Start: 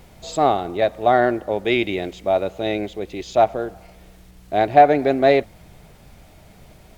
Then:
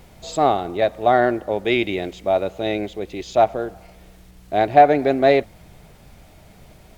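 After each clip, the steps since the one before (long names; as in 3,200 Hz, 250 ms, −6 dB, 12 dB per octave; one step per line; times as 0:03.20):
no processing that can be heard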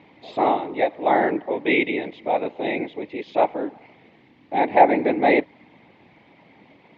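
random phases in short frames
loudspeaker in its box 210–3,500 Hz, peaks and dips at 300 Hz +6 dB, 650 Hz −3 dB, 930 Hz +5 dB, 1,400 Hz −7 dB, 2,100 Hz +8 dB
level −2.5 dB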